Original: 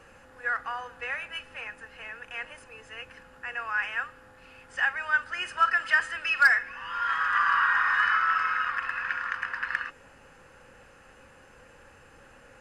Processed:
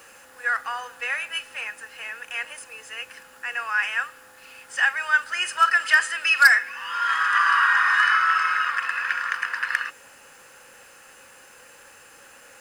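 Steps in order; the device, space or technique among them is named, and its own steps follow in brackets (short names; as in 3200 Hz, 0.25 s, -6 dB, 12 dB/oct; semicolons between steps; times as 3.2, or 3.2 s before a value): turntable without a phono preamp (RIAA curve recording; white noise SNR 38 dB); gain +3.5 dB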